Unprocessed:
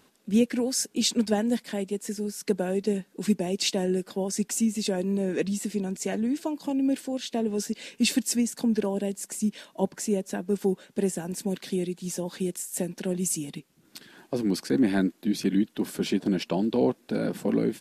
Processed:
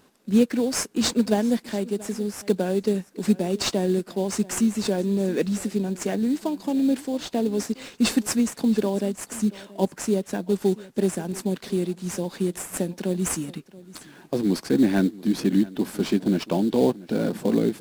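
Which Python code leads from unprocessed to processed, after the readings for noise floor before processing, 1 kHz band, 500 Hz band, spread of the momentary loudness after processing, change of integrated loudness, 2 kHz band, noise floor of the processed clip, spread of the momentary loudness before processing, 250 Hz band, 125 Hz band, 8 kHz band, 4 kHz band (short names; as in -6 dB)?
-63 dBFS, +3.5 dB, +3.5 dB, 7 LU, +3.0 dB, +2.0 dB, -53 dBFS, 7 LU, +3.5 dB, +3.5 dB, 0.0 dB, +0.5 dB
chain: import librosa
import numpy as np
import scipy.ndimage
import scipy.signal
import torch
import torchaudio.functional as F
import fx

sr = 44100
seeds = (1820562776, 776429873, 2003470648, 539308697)

p1 = fx.sample_hold(x, sr, seeds[0], rate_hz=4100.0, jitter_pct=20)
p2 = x + (p1 * librosa.db_to_amplitude(-6.0))
y = p2 + 10.0 ** (-20.0 / 20.0) * np.pad(p2, (int(680 * sr / 1000.0), 0))[:len(p2)]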